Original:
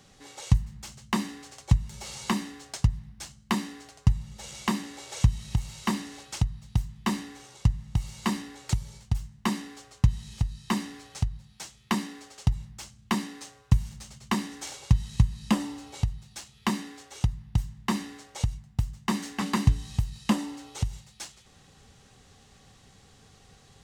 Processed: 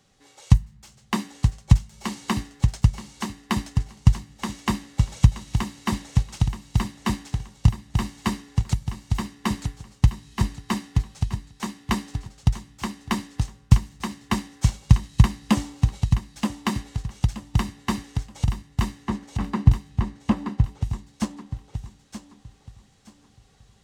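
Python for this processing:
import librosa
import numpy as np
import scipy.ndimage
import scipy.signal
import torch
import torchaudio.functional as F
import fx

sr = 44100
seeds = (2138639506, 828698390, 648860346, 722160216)

y = fx.lowpass(x, sr, hz=1000.0, slope=6, at=(18.96, 20.82), fade=0.02)
y = fx.echo_feedback(y, sr, ms=926, feedback_pct=39, wet_db=-3.5)
y = fx.upward_expand(y, sr, threshold_db=-40.0, expansion=1.5)
y = F.gain(torch.from_numpy(y), 6.5).numpy()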